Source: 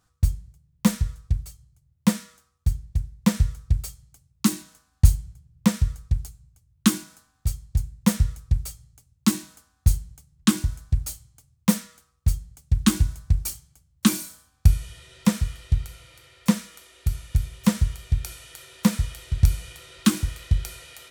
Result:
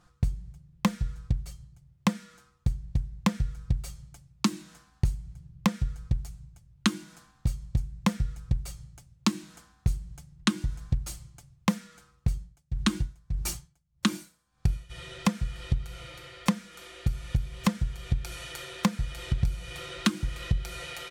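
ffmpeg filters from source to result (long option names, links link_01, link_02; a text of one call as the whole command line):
ffmpeg -i in.wav -filter_complex "[0:a]asplit=3[link_01][link_02][link_03];[link_01]afade=type=out:start_time=12.29:duration=0.02[link_04];[link_02]aeval=exprs='val(0)*pow(10,-21*(0.5-0.5*cos(2*PI*1.7*n/s))/20)':channel_layout=same,afade=type=in:start_time=12.29:duration=0.02,afade=type=out:start_time=14.89:duration=0.02[link_05];[link_03]afade=type=in:start_time=14.89:duration=0.02[link_06];[link_04][link_05][link_06]amix=inputs=3:normalize=0,aemphasis=mode=reproduction:type=50kf,aecho=1:1:5.7:0.54,acompressor=threshold=-31dB:ratio=6,volume=7.5dB" out.wav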